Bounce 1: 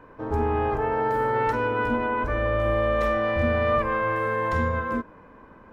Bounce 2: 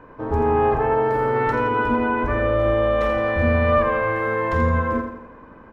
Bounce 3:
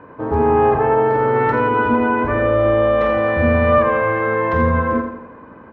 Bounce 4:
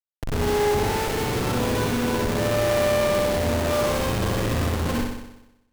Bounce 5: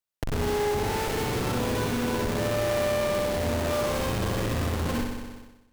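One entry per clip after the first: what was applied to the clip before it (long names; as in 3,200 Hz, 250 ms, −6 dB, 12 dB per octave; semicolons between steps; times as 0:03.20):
high-shelf EQ 4,300 Hz −8.5 dB; repeating echo 84 ms, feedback 48%, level −7.5 dB; level +4 dB
high-pass filter 87 Hz 12 dB per octave; high-frequency loss of the air 200 metres; level +5 dB
comparator with hysteresis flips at −16 dBFS; flutter between parallel walls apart 10.7 metres, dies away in 0.89 s; level −8.5 dB
downward compressor 2 to 1, threshold −38 dBFS, peak gain reduction 10.5 dB; level +5.5 dB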